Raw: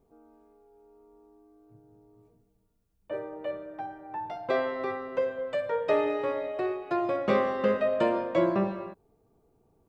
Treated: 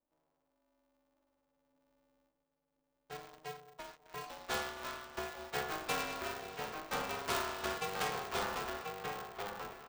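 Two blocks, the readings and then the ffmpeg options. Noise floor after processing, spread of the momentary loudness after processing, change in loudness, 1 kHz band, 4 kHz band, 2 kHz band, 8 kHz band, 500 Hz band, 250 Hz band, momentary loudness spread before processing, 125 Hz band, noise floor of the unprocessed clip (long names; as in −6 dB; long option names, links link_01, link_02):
−84 dBFS, 12 LU, −10.0 dB, −6.0 dB, +4.5 dB, −3.0 dB, can't be measured, −15.5 dB, −16.5 dB, 12 LU, −9.5 dB, −70 dBFS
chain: -filter_complex "[0:a]asuperstop=centerf=2000:order=12:qfactor=4.2,equalizer=frequency=280:width=1.8:gain=-14.5,acrossover=split=820[link_01][link_02];[link_02]acrusher=bits=7:mix=0:aa=0.000001[link_03];[link_01][link_03]amix=inputs=2:normalize=0,adynamicsmooth=sensitivity=7:basefreq=1000,aderivative,asplit=2[link_04][link_05];[link_05]adelay=12,volume=-12dB[link_06];[link_04][link_06]amix=inputs=2:normalize=0,asplit=2[link_07][link_08];[link_08]adelay=1037,lowpass=frequency=2000:poles=1,volume=-3dB,asplit=2[link_09][link_10];[link_10]adelay=1037,lowpass=frequency=2000:poles=1,volume=0.23,asplit=2[link_11][link_12];[link_12]adelay=1037,lowpass=frequency=2000:poles=1,volume=0.23[link_13];[link_09][link_11][link_13]amix=inputs=3:normalize=0[link_14];[link_07][link_14]amix=inputs=2:normalize=0,aeval=exprs='val(0)*sgn(sin(2*PI*150*n/s))':channel_layout=same,volume=10dB"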